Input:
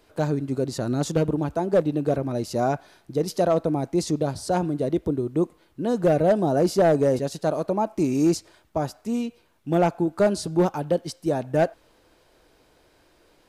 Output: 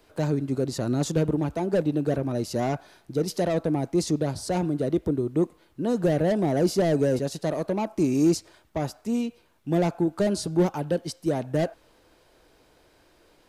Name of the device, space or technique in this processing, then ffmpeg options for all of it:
one-band saturation: -filter_complex "[0:a]acrossover=split=450|3500[a][b][c];[b]asoftclip=type=tanh:threshold=-28dB[d];[a][d][c]amix=inputs=3:normalize=0"

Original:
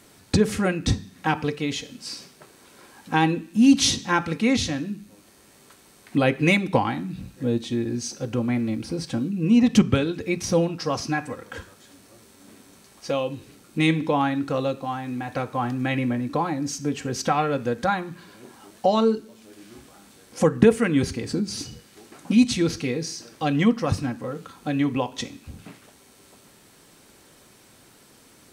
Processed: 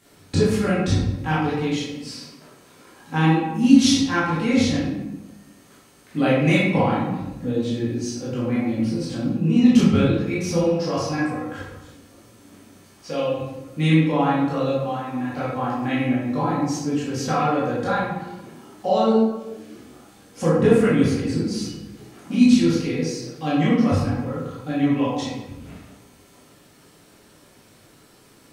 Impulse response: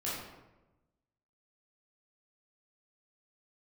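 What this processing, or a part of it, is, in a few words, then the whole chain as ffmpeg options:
bathroom: -filter_complex "[1:a]atrim=start_sample=2205[a];[0:a][a]afir=irnorm=-1:irlink=0,volume=-3dB"

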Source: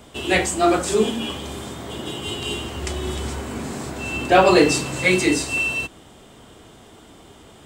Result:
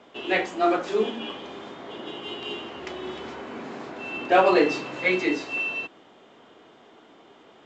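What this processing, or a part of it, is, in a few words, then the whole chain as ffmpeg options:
telephone: -af "highpass=290,lowpass=3k,volume=-3.5dB" -ar 16000 -c:a pcm_alaw

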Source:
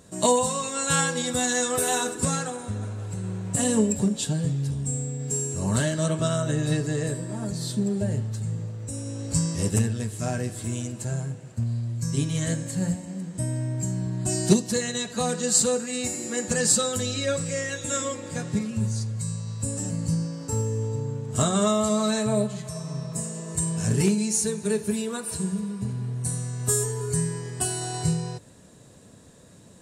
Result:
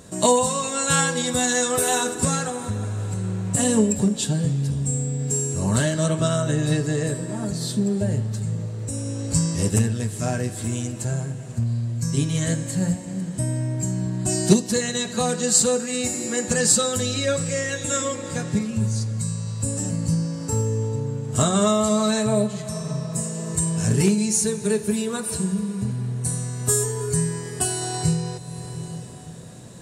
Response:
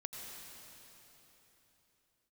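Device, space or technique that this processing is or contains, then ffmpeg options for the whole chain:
ducked reverb: -filter_complex "[0:a]asplit=3[a][b][c];[1:a]atrim=start_sample=2205[d];[b][d]afir=irnorm=-1:irlink=0[e];[c]apad=whole_len=1314828[f];[e][f]sidechaincompress=threshold=-39dB:ratio=8:attack=16:release=390,volume=0.5dB[g];[a][g]amix=inputs=2:normalize=0,volume=2.5dB"

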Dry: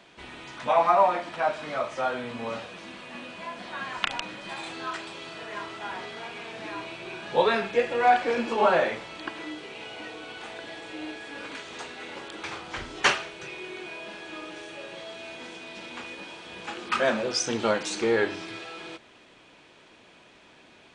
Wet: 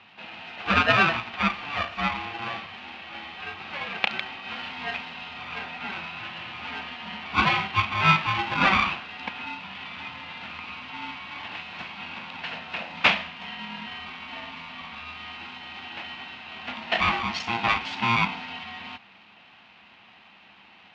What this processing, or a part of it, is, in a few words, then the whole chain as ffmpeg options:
ring modulator pedal into a guitar cabinet: -af "aeval=exprs='val(0)*sgn(sin(2*PI*580*n/s))':c=same,highpass=110,equalizer=f=140:t=q:w=4:g=-6,equalizer=f=200:t=q:w=4:g=6,equalizer=f=290:t=q:w=4:g=-5,equalizer=f=410:t=q:w=4:g=-9,equalizer=f=740:t=q:w=4:g=5,equalizer=f=2.6k:t=q:w=4:g=9,lowpass=f=4k:w=0.5412,lowpass=f=4k:w=1.3066"

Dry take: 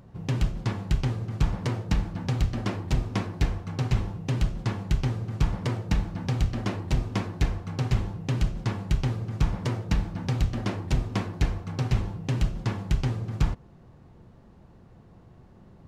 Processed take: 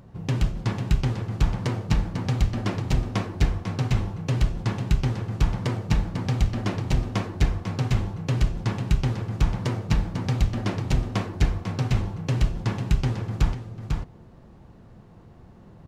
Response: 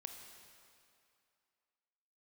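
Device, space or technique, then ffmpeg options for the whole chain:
ducked delay: -filter_complex "[0:a]asplit=3[a][b][c];[b]adelay=497,volume=-4dB[d];[c]apad=whole_len=722112[e];[d][e]sidechaincompress=threshold=-24dB:ratio=8:attack=5.2:release=780[f];[a][f]amix=inputs=2:normalize=0,volume=2dB"

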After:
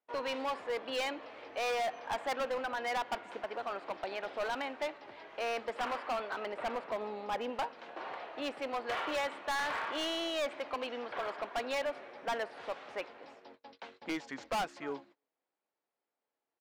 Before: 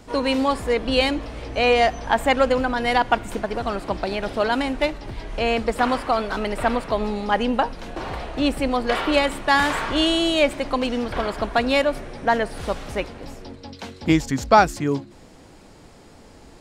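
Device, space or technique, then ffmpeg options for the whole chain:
walkie-talkie: -filter_complex "[0:a]asettb=1/sr,asplit=3[a][b][c];[a]atrim=end=6.454[d];[b]atrim=start=6.45:end=7.5,asetpts=PTS-STARTPTS,afade=t=in:d=0.004:c=qsin,afade=t=out:st=1.046:d=0.004:c=qsin,tiltshelf=f=760:g=3.5[e];[c]atrim=start=7.496[f];[d][e]acrossfade=d=0.004:c1=hsin:c2=qsin[g];[g][f]acrossfade=d=0.004:c1=qsin:c2=hsin,highpass=530,lowpass=3k,asplit=2[h][i];[i]adelay=297.4,volume=-27dB,highshelf=f=4k:g=-6.69[j];[h][j]amix=inputs=2:normalize=0,asoftclip=type=hard:threshold=-21.5dB,agate=range=-29dB:threshold=-46dB:ratio=16:detection=peak,volume=-9dB"

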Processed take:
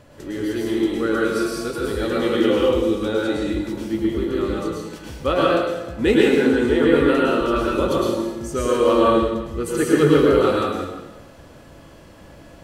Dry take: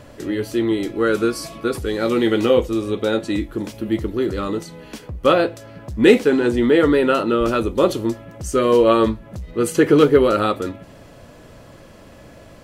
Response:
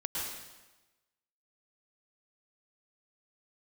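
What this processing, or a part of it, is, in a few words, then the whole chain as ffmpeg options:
bathroom: -filter_complex "[1:a]atrim=start_sample=2205[a];[0:a][a]afir=irnorm=-1:irlink=0,volume=-5dB"

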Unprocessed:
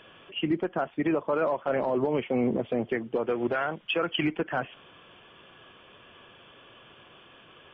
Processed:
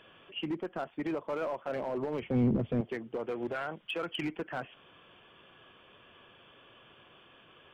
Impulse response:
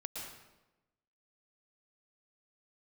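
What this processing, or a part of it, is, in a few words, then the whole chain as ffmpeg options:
limiter into clipper: -filter_complex "[0:a]alimiter=limit=-20dB:level=0:latency=1:release=333,asoftclip=type=hard:threshold=-23.5dB,asettb=1/sr,asplit=3[a][b][c];[a]atrim=end=2.224[d];[b]atrim=start=2.22:end=2.81,asetpts=PTS-STARTPTS,afade=t=in:d=0.004:c=qsin,afade=t=out:st=0.586:d=0.004:c=qsin,bass=f=250:g=15,treble=f=4k:g=-4[e];[c]atrim=start=2.806[f];[d][e]acrossfade=d=0.004:c1=hsin:c2=qsin[g];[g][f]acrossfade=d=0.004:c1=qsin:c2=hsin,volume=-5dB"

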